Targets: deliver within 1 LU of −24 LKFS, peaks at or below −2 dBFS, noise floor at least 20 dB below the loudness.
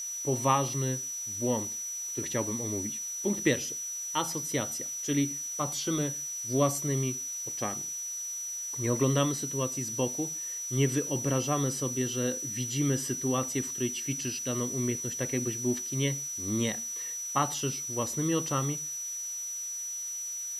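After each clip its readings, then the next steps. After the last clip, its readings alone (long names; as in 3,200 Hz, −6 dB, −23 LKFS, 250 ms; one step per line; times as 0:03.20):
interfering tone 5,900 Hz; level of the tone −34 dBFS; background noise floor −37 dBFS; target noise floor −51 dBFS; integrated loudness −30.5 LKFS; sample peak −12.0 dBFS; target loudness −24.0 LKFS
→ notch filter 5,900 Hz, Q 30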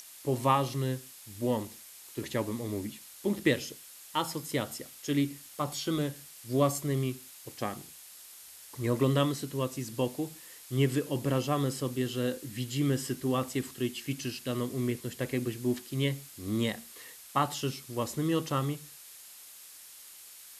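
interfering tone none found; background noise floor −51 dBFS; target noise floor −52 dBFS
→ noise reduction from a noise print 6 dB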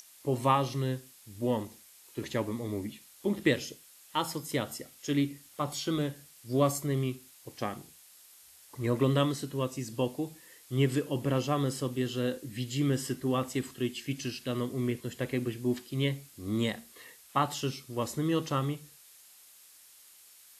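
background noise floor −57 dBFS; integrated loudness −32.0 LKFS; sample peak −12.0 dBFS; target loudness −24.0 LKFS
→ level +8 dB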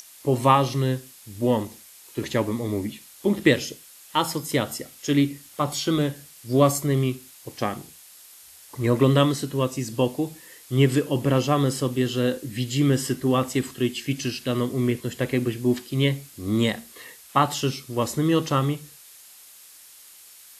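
integrated loudness −24.0 LKFS; sample peak −4.0 dBFS; background noise floor −49 dBFS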